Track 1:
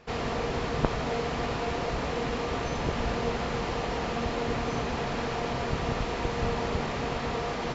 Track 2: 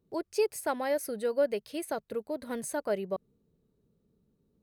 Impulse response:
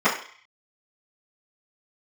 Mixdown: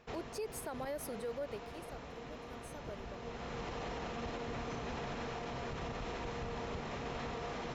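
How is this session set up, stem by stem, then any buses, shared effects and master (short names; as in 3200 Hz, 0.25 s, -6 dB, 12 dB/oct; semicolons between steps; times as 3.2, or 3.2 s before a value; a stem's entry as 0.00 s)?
-6.5 dB, 0.00 s, no send, notch 4600 Hz, Q 15; auto duck -11 dB, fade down 0.25 s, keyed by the second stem
1.18 s -6 dB -> 1.93 s -18.5 dB, 0.00 s, no send, dry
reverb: off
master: limiter -32.5 dBFS, peak gain reduction 10.5 dB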